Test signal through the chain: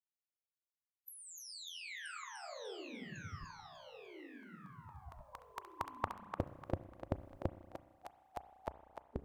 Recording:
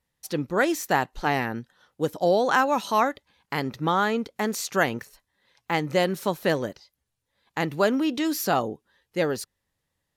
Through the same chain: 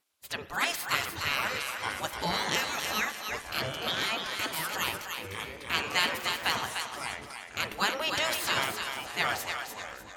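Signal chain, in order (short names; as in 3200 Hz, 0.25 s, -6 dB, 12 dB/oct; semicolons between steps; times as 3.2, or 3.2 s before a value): spectral gate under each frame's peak -15 dB weak; bell 89 Hz +12 dB 0.71 oct; echoes that change speed 0.615 s, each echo -5 st, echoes 2, each echo -6 dB; thinning echo 0.298 s, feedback 34%, high-pass 600 Hz, level -5.5 dB; spring tank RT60 1.4 s, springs 31/38 ms, chirp 60 ms, DRR 13 dB; gain +5 dB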